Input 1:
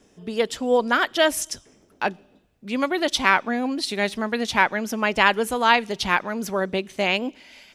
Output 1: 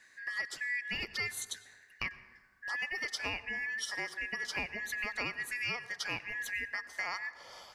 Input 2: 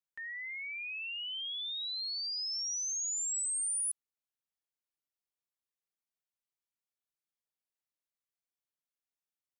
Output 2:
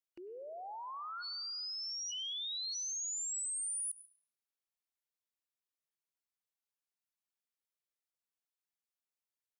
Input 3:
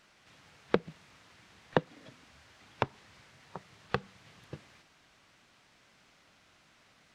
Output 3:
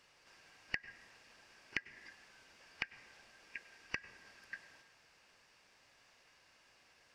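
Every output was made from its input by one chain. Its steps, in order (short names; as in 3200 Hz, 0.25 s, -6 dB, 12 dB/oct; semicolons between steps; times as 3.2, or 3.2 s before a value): four-band scrambler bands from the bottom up 2143; low shelf 420 Hz -6 dB; compressor 4:1, threshold -33 dBFS; plate-style reverb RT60 1.4 s, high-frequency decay 0.35×, pre-delay 85 ms, DRR 15 dB; gain -3 dB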